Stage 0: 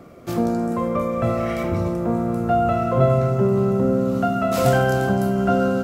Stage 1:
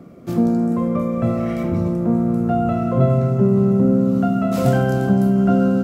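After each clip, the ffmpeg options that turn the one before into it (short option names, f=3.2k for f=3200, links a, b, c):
-af "equalizer=f=200:t=o:w=1.8:g=11.5,volume=-5dB"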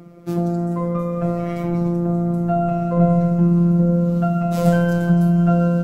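-af "asubboost=boost=4:cutoff=120,afftfilt=real='hypot(re,im)*cos(PI*b)':imag='0':win_size=1024:overlap=0.75,volume=2dB"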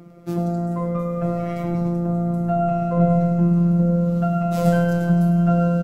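-af "aecho=1:1:103:0.316,volume=-2dB"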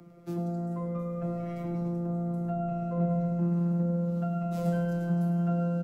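-filter_complex "[0:a]acrossover=split=410[a][b];[b]acompressor=threshold=-41dB:ratio=1.5[c];[a][c]amix=inputs=2:normalize=0,acrossover=split=150|670[d][e][f];[d]asoftclip=type=tanh:threshold=-35dB[g];[g][e][f]amix=inputs=3:normalize=0,volume=-7.5dB"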